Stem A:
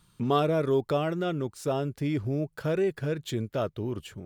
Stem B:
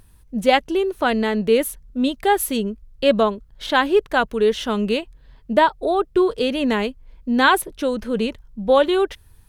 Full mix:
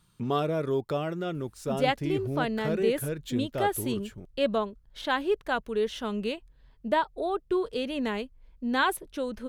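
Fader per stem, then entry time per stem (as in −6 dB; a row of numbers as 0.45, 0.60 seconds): −3.0, −10.0 decibels; 0.00, 1.35 seconds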